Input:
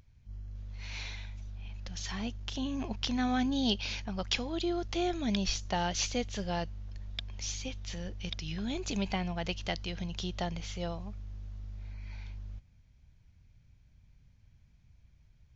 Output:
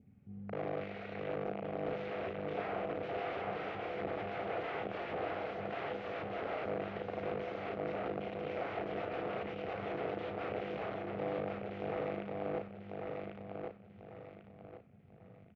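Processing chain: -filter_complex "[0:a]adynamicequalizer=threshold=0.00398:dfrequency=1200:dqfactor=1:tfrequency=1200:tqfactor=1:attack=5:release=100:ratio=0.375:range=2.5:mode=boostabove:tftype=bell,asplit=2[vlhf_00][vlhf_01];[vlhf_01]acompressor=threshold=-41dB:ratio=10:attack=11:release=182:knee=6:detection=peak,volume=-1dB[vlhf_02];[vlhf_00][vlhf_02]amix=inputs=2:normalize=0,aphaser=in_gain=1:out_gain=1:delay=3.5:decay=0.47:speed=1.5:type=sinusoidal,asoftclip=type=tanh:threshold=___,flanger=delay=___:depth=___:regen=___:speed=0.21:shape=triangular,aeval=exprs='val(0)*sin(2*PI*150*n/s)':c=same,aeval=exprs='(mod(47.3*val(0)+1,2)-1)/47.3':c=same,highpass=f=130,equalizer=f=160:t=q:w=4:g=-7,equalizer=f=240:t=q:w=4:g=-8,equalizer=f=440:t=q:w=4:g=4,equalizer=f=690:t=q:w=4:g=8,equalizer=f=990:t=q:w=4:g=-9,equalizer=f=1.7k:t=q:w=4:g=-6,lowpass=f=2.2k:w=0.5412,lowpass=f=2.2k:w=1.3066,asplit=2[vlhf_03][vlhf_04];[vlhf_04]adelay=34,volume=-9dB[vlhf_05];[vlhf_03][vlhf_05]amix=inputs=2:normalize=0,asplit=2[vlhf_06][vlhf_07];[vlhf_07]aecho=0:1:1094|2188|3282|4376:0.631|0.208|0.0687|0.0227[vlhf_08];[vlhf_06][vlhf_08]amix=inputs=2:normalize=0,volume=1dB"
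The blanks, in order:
-14.5dB, 2.9, 1.3, -31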